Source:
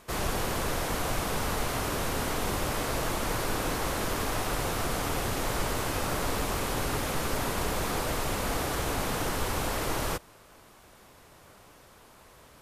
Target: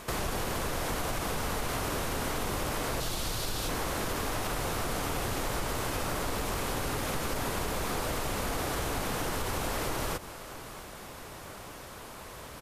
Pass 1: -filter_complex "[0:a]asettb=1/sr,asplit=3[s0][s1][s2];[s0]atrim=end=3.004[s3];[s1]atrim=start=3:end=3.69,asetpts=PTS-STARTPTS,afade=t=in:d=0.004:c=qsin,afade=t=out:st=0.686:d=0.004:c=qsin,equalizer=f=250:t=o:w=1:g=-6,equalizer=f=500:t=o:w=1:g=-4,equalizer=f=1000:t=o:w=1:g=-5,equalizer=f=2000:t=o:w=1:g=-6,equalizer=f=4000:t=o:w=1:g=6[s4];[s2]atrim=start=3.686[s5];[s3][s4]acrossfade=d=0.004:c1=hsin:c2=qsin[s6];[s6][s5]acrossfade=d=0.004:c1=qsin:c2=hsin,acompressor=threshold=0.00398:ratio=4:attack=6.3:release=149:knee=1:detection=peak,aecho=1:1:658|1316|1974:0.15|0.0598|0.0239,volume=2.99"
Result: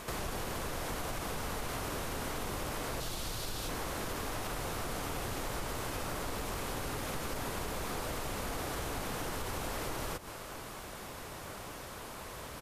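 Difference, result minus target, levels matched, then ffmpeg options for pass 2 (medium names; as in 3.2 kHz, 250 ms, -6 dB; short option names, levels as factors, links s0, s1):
compression: peak gain reduction +5 dB
-filter_complex "[0:a]asettb=1/sr,asplit=3[s0][s1][s2];[s0]atrim=end=3.004[s3];[s1]atrim=start=3:end=3.69,asetpts=PTS-STARTPTS,afade=t=in:d=0.004:c=qsin,afade=t=out:st=0.686:d=0.004:c=qsin,equalizer=f=250:t=o:w=1:g=-6,equalizer=f=500:t=o:w=1:g=-4,equalizer=f=1000:t=o:w=1:g=-5,equalizer=f=2000:t=o:w=1:g=-6,equalizer=f=4000:t=o:w=1:g=6[s4];[s2]atrim=start=3.686[s5];[s3][s4]acrossfade=d=0.004:c1=hsin:c2=qsin[s6];[s6][s5]acrossfade=d=0.004:c1=qsin:c2=hsin,acompressor=threshold=0.00891:ratio=4:attack=6.3:release=149:knee=1:detection=peak,aecho=1:1:658|1316|1974:0.15|0.0598|0.0239,volume=2.99"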